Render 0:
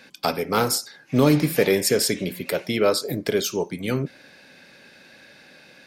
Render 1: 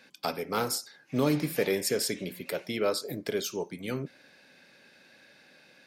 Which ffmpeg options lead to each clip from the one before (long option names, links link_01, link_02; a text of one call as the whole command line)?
ffmpeg -i in.wav -af "lowshelf=frequency=97:gain=-7,volume=-8dB" out.wav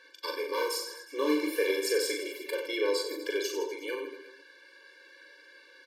ffmpeg -i in.wav -filter_complex "[0:a]asplit=2[link_01][link_02];[link_02]highpass=frequency=720:poles=1,volume=11dB,asoftclip=type=tanh:threshold=-14dB[link_03];[link_01][link_03]amix=inputs=2:normalize=0,lowpass=frequency=4400:poles=1,volume=-6dB,aecho=1:1:40|92|159.6|247.5|361.7:0.631|0.398|0.251|0.158|0.1,afftfilt=real='re*eq(mod(floor(b*sr/1024/300),2),1)':imag='im*eq(mod(floor(b*sr/1024/300),2),1)':win_size=1024:overlap=0.75,volume=-1.5dB" out.wav